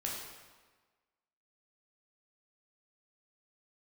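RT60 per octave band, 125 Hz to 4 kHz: 1.3 s, 1.3 s, 1.4 s, 1.4 s, 1.3 s, 1.1 s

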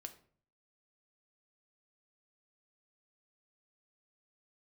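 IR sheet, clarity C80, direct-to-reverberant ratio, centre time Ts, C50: 17.0 dB, 6.5 dB, 8 ms, 13.5 dB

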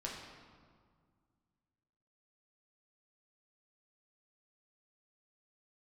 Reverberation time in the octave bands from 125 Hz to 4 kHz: 2.7 s, 2.5 s, 1.9 s, 1.9 s, 1.4 s, 1.2 s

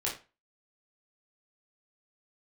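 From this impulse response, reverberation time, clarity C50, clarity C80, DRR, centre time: 0.30 s, 8.0 dB, 13.5 dB, -5.5 dB, 27 ms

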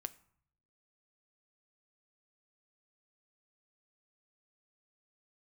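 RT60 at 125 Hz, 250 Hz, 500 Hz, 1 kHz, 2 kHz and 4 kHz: 1.1 s, 0.80 s, 0.55 s, 0.65 s, 0.50 s, 0.40 s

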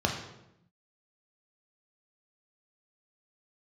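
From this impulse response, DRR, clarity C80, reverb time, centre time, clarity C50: 1.0 dB, 8.5 dB, 0.85 s, 30 ms, 6.0 dB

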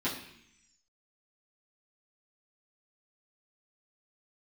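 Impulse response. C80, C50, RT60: 10.0 dB, 7.0 dB, 0.70 s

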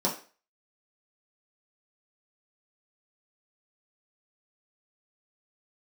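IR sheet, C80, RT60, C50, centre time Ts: 14.5 dB, 0.40 s, 9.5 dB, 23 ms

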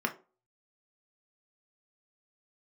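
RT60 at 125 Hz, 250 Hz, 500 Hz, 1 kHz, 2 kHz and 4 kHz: 0.30 s, 0.35 s, 0.35 s, 0.30 s, 0.25 s, 0.20 s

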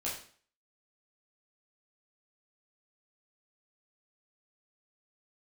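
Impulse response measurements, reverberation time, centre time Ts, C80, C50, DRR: 0.50 s, 35 ms, 9.5 dB, 5.0 dB, -7.0 dB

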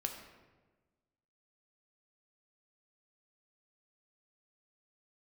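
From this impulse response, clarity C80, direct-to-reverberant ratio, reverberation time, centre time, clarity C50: 8.0 dB, 3.0 dB, 1.3 s, 30 ms, 6.5 dB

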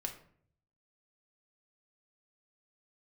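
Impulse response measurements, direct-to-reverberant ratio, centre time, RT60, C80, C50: 3.5 dB, 14 ms, 0.60 s, 13.5 dB, 10.0 dB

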